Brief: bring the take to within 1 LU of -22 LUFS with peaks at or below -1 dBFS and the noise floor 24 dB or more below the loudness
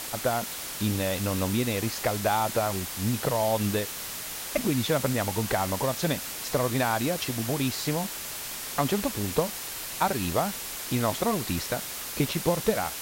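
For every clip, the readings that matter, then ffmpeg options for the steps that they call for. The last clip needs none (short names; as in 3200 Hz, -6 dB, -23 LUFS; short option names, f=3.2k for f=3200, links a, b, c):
noise floor -37 dBFS; noise floor target -52 dBFS; loudness -28.0 LUFS; peak -11.0 dBFS; loudness target -22.0 LUFS
-> -af "afftdn=nr=15:nf=-37"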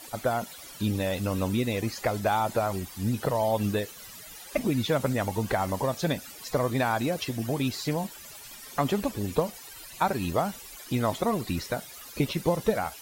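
noise floor -45 dBFS; noise floor target -53 dBFS
-> -af "afftdn=nr=8:nf=-45"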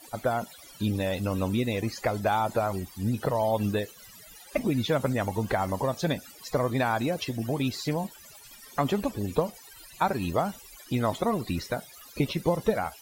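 noise floor -50 dBFS; noise floor target -53 dBFS
-> -af "afftdn=nr=6:nf=-50"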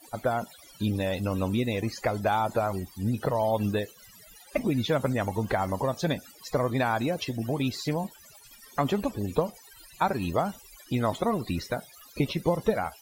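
noise floor -53 dBFS; loudness -29.0 LUFS; peak -11.5 dBFS; loudness target -22.0 LUFS
-> -af "volume=7dB"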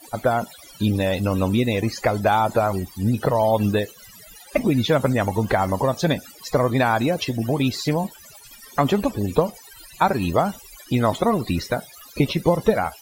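loudness -22.0 LUFS; peak -4.5 dBFS; noise floor -46 dBFS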